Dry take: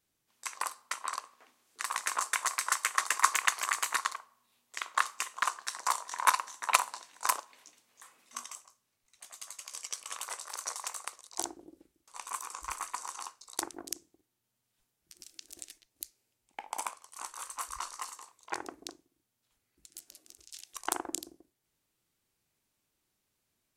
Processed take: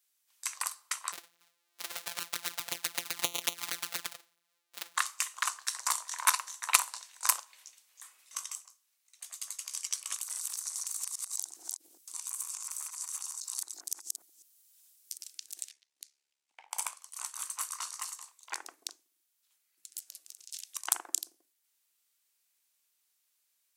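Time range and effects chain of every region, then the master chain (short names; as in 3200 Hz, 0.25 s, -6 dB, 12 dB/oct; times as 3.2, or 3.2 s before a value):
1.12–4.97 sample sorter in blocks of 256 samples + bell 3900 Hz +2.5 dB 0.25 oct + envelope flanger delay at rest 8.9 ms, full sweep at -24.5 dBFS
10.14–15.18 reverse delay 0.204 s, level -1 dB + compressor 8:1, threshold -46 dBFS + tone controls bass +5 dB, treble +11 dB
15.69–16.71 ring modulator 35 Hz + air absorption 72 m
whole clip: HPF 1100 Hz 6 dB/oct; tilt +2.5 dB/oct; gain -2 dB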